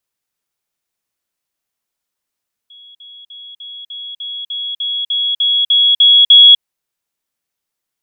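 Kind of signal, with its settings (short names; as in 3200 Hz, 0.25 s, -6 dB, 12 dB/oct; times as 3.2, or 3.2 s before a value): level ladder 3340 Hz -37.5 dBFS, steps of 3 dB, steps 13, 0.25 s 0.05 s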